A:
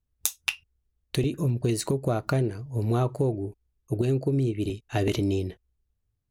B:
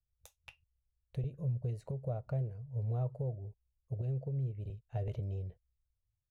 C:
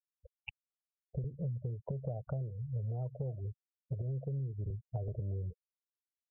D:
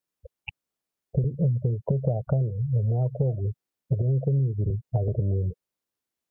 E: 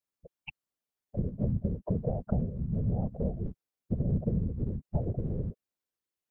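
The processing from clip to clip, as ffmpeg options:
-af "firequalizer=gain_entry='entry(130,0);entry(300,-25);entry(500,-2);entry(1100,-17);entry(2300,-18);entry(4300,-25);entry(11000,-27)':delay=0.05:min_phase=1,volume=0.422"
-filter_complex "[0:a]acrossover=split=220|420|1400[s0][s1][s2][s3];[s3]acrusher=bits=7:mix=0:aa=0.000001[s4];[s0][s1][s2][s4]amix=inputs=4:normalize=0,afftfilt=real='re*gte(hypot(re,im),0.00562)':imag='im*gte(hypot(re,im),0.00562)':win_size=1024:overlap=0.75,acompressor=threshold=0.00631:ratio=10,volume=2.99"
-af "equalizer=f=260:w=0.39:g=8,volume=2.37"
-af "afftfilt=real='hypot(re,im)*cos(2*PI*random(0))':imag='hypot(re,im)*sin(2*PI*random(1))':win_size=512:overlap=0.75"

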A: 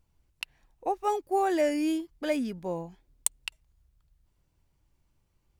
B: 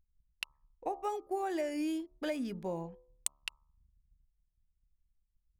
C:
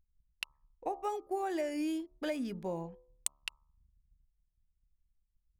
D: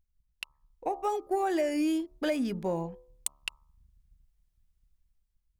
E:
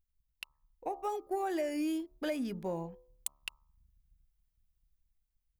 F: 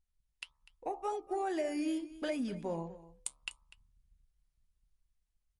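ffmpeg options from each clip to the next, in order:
-af "acompressor=threshold=0.0316:ratio=6,anlmdn=0.000158,bandreject=f=71.79:t=h:w=4,bandreject=f=143.58:t=h:w=4,bandreject=f=215.37:t=h:w=4,bandreject=f=287.16:t=h:w=4,bandreject=f=358.95:t=h:w=4,bandreject=f=430.74:t=h:w=4,bandreject=f=502.53:t=h:w=4,bandreject=f=574.32:t=h:w=4,bandreject=f=646.11:t=h:w=4,bandreject=f=717.9:t=h:w=4,bandreject=f=789.69:t=h:w=4,bandreject=f=861.48:t=h:w=4,bandreject=f=933.27:t=h:w=4,bandreject=f=1005.06:t=h:w=4,bandreject=f=1076.85:t=h:w=4,bandreject=f=1148.64:t=h:w=4,bandreject=f=1220.43:t=h:w=4,bandreject=f=1292.22:t=h:w=4,volume=0.841"
-af anull
-af "dynaudnorm=f=230:g=7:m=2.24,asoftclip=type=tanh:threshold=0.15"
-af "aexciter=amount=1.1:drive=8:freq=11000,volume=0.531"
-af "flanger=delay=4.2:depth=4:regen=-72:speed=1.7:shape=sinusoidal,aecho=1:1:247:0.133,volume=1.58" -ar 44100 -c:a libmp3lame -b:a 48k

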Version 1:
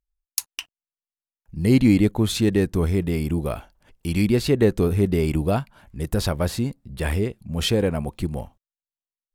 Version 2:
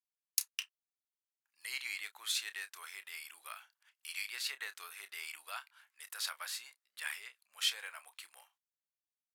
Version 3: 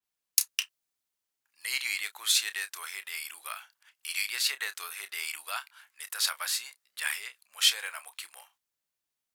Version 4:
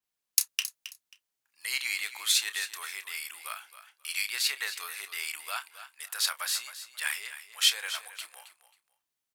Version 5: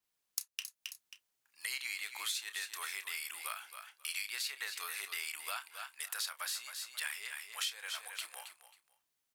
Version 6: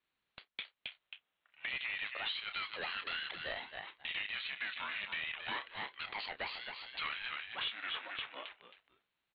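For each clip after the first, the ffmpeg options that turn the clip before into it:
-filter_complex "[0:a]highpass=f=1300:w=0.5412,highpass=f=1300:w=1.3066,asplit=2[s0][s1];[s1]adelay=30,volume=0.237[s2];[s0][s2]amix=inputs=2:normalize=0,volume=0.447"
-af "adynamicequalizer=threshold=0.00398:dfrequency=3900:dqfactor=0.7:tfrequency=3900:tqfactor=0.7:attack=5:release=100:ratio=0.375:range=2:mode=boostabove:tftype=highshelf,volume=2.51"
-af "aecho=1:1:269|538:0.224|0.047"
-af "acompressor=threshold=0.0112:ratio=5,volume=1.26"
-af "highpass=320,aresample=8000,asoftclip=type=tanh:threshold=0.0126,aresample=44100,aeval=exprs='val(0)*sin(2*PI*430*n/s+430*0.55/0.31*sin(2*PI*0.31*n/s))':c=same,volume=2.66"

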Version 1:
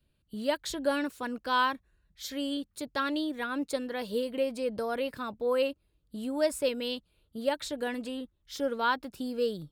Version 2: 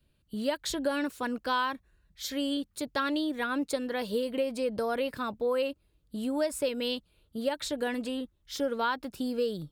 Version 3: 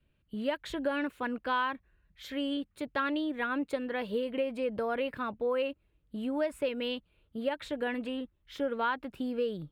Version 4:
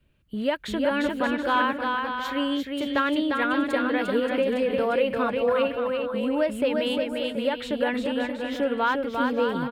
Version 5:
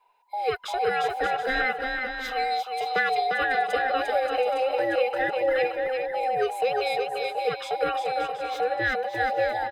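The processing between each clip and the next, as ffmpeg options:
-af "acompressor=threshold=0.0398:ratio=6,volume=1.41"
-af "highshelf=f=3700:t=q:w=1.5:g=-12,volume=0.794"
-af "aecho=1:1:350|577.5|725.4|821.5|884:0.631|0.398|0.251|0.158|0.1,volume=2.11"
-af "afftfilt=real='real(if(between(b,1,1008),(2*floor((b-1)/48)+1)*48-b,b),0)':imag='imag(if(between(b,1,1008),(2*floor((b-1)/48)+1)*48-b,b),0)*if(between(b,1,1008),-1,1)':win_size=2048:overlap=0.75,bass=f=250:g=-13,treble=f=4000:g=0"

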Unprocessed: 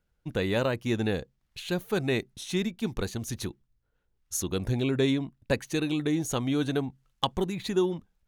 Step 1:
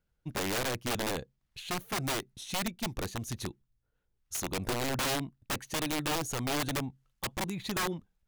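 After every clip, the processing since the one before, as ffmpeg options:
-af "equalizer=f=130:t=o:w=0.97:g=2,aeval=exprs='(mod(12.6*val(0)+1,2)-1)/12.6':c=same,volume=0.631"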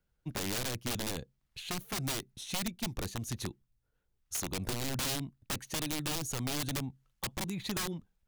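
-filter_complex "[0:a]acrossover=split=260|3000[s0][s1][s2];[s1]acompressor=threshold=0.0112:ratio=6[s3];[s0][s3][s2]amix=inputs=3:normalize=0"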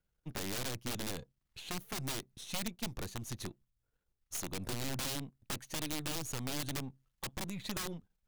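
-af "aeval=exprs='if(lt(val(0),0),0.447*val(0),val(0))':c=same,volume=0.841"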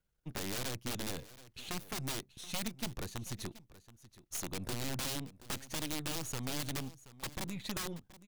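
-af "aecho=1:1:727:0.133"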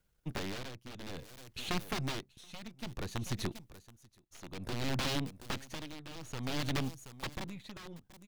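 -filter_complex "[0:a]acrossover=split=5000[s0][s1];[s1]acompressor=threshold=0.00251:ratio=4:attack=1:release=60[s2];[s0][s2]amix=inputs=2:normalize=0,tremolo=f=0.58:d=0.82,volume=2.11"

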